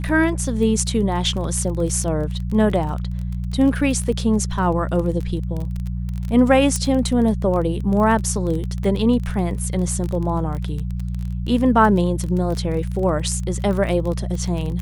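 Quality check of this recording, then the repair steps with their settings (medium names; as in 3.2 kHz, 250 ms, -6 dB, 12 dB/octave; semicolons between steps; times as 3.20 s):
crackle 24 per s -25 dBFS
hum 60 Hz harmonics 3 -25 dBFS
6.76 s: pop -9 dBFS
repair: de-click; de-hum 60 Hz, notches 3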